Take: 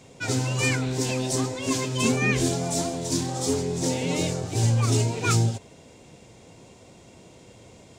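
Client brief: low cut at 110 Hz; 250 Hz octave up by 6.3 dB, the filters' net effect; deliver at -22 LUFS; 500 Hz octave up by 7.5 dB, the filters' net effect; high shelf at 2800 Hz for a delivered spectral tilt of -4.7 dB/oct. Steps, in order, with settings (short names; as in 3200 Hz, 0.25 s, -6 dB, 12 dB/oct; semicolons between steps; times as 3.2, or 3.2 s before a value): HPF 110 Hz; bell 250 Hz +5.5 dB; bell 500 Hz +7.5 dB; high shelf 2800 Hz +3 dB; gain -1 dB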